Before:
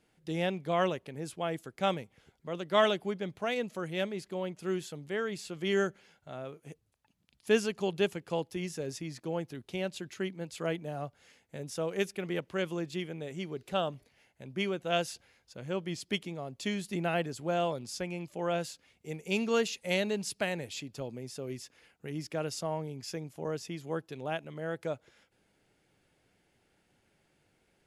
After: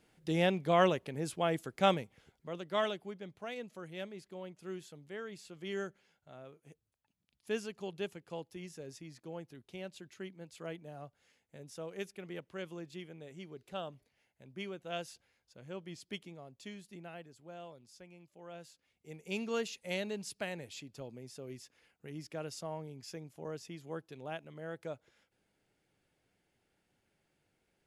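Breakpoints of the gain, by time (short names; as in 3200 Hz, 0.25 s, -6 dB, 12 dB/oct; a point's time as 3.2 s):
1.89 s +2 dB
3.05 s -10 dB
16.3 s -10 dB
17.23 s -18.5 dB
18.45 s -18.5 dB
19.3 s -7 dB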